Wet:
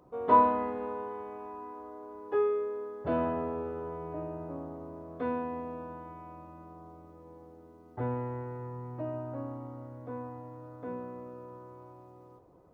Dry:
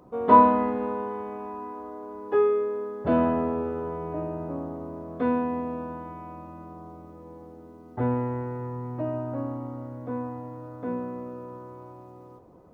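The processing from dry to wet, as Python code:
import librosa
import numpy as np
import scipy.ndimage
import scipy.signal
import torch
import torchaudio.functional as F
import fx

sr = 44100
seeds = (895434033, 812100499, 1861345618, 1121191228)

y = fx.peak_eq(x, sr, hz=220.0, db=-11.0, octaves=0.26)
y = y * 10.0 ** (-6.0 / 20.0)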